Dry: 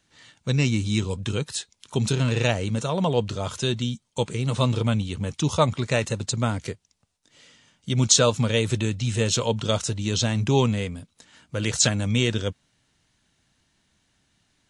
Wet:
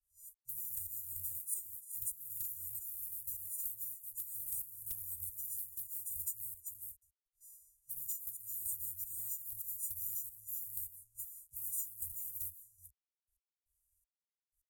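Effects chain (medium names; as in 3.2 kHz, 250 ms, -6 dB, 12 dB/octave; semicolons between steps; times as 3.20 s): partials quantised in pitch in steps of 3 st; trance gate "xxx.....x...x" 156 bpm -12 dB; delay 376 ms -17.5 dB; companded quantiser 4-bit; compression 20:1, threshold -31 dBFS, peak gain reduction 20 dB; inverse Chebyshev band-stop 260–3600 Hz, stop band 70 dB; wavefolder -35 dBFS; tone controls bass -10 dB, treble +10 dB; level-controlled noise filter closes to 1.5 kHz, open at -42.5 dBFS; trim +4.5 dB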